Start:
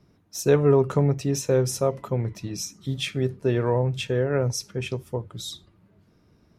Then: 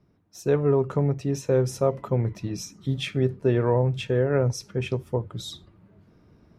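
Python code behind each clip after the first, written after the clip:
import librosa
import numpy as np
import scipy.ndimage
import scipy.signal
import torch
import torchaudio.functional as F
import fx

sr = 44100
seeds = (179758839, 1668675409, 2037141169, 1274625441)

y = fx.high_shelf(x, sr, hz=3500.0, db=-10.0)
y = fx.rider(y, sr, range_db=4, speed_s=2.0)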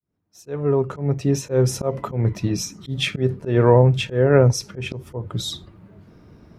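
y = fx.fade_in_head(x, sr, length_s=1.56)
y = fx.auto_swell(y, sr, attack_ms=164.0)
y = y * 10.0 ** (8.5 / 20.0)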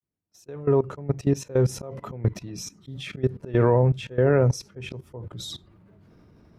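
y = fx.level_steps(x, sr, step_db=18)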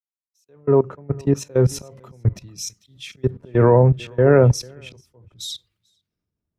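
y = x + 10.0 ** (-19.0 / 20.0) * np.pad(x, (int(448 * sr / 1000.0), 0))[:len(x)]
y = fx.band_widen(y, sr, depth_pct=100)
y = y * 10.0 ** (2.5 / 20.0)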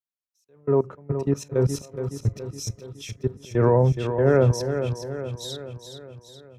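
y = fx.echo_feedback(x, sr, ms=420, feedback_pct=53, wet_db=-8.5)
y = y * 10.0 ** (-5.0 / 20.0)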